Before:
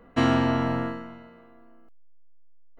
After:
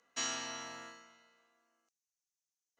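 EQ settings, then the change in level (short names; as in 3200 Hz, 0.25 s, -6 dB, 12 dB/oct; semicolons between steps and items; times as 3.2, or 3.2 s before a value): band-pass 6200 Hz, Q 5.8; +14.0 dB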